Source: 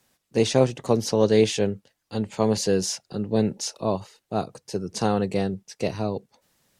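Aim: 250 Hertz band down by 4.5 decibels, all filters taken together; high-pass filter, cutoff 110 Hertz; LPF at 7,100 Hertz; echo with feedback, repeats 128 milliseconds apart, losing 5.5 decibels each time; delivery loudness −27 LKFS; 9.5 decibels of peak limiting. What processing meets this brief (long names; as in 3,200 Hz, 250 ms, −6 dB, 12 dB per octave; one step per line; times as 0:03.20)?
high-pass filter 110 Hz
low-pass filter 7,100 Hz
parametric band 250 Hz −5.5 dB
brickwall limiter −17.5 dBFS
repeating echo 128 ms, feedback 53%, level −5.5 dB
level +2 dB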